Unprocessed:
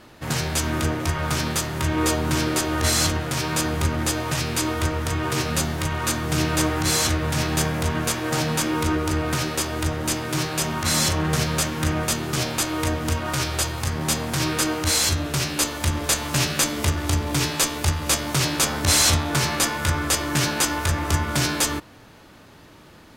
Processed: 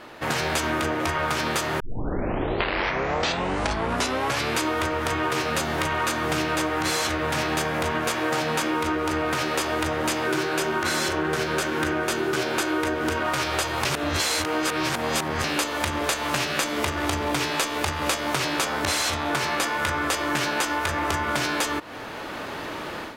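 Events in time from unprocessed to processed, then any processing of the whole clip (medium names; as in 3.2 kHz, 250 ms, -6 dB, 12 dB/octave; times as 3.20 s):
1.80 s: tape start 2.79 s
10.26–13.23 s: small resonant body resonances 370/1500 Hz, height 11 dB
13.85–15.44 s: reverse
whole clip: level rider; tone controls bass -13 dB, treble -9 dB; compression 10:1, threshold -29 dBFS; trim +7 dB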